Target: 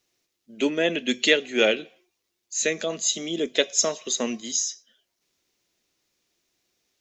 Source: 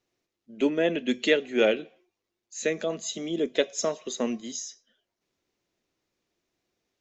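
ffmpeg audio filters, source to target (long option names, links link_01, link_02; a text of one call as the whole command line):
ffmpeg -i in.wav -af "highshelf=frequency=2300:gain=12" out.wav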